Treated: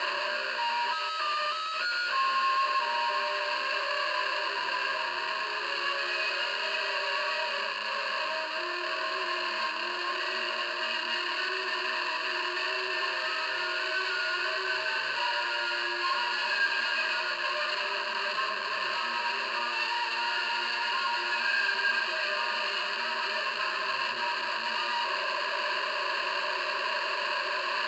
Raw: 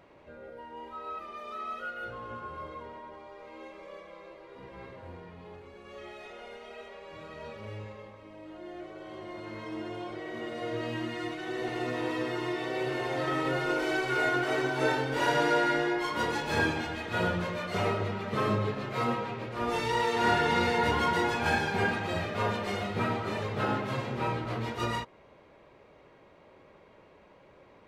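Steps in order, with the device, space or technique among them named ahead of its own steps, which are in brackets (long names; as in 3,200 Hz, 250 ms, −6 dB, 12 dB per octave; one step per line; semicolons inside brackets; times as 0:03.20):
high-pass filter 81 Hz 6 dB per octave
home computer beeper (sign of each sample alone; loudspeaker in its box 760–4,800 Hz, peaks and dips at 770 Hz −9 dB, 1,200 Hz +10 dB, 1,800 Hz +3 dB, 2,900 Hz +4 dB, 4,700 Hz +4 dB)
EQ curve with evenly spaced ripples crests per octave 1.4, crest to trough 16 dB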